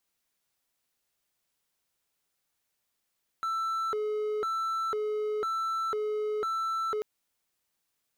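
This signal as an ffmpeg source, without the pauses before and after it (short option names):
-f lavfi -i "aevalsrc='0.0501*(1-4*abs(mod((877.5*t+452.5/1*(0.5-abs(mod(1*t,1)-0.5)))+0.25,1)-0.5))':d=3.59:s=44100"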